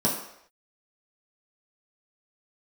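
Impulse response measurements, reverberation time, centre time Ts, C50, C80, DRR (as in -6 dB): no single decay rate, 36 ms, 5.5 dB, 8.0 dB, -6.0 dB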